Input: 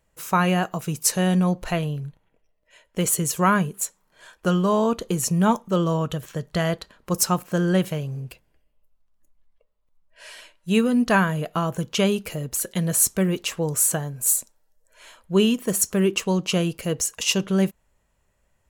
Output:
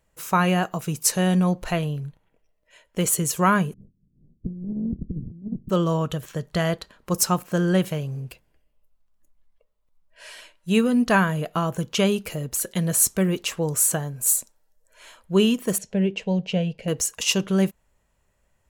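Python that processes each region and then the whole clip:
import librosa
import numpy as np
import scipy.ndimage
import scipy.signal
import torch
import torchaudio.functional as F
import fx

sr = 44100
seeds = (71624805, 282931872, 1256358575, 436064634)

y = fx.spec_clip(x, sr, under_db=22, at=(3.72, 5.69), fade=0.02)
y = fx.cheby2_lowpass(y, sr, hz=1300.0, order=4, stop_db=80, at=(3.72, 5.69), fade=0.02)
y = fx.over_compress(y, sr, threshold_db=-34.0, ratio=-0.5, at=(3.72, 5.69), fade=0.02)
y = fx.chain(y, sr, fx.lowpass(hz=2700.0, slope=12),
    fx.fixed_phaser(hz=320.0, stages=6), at=(15.78, 16.88))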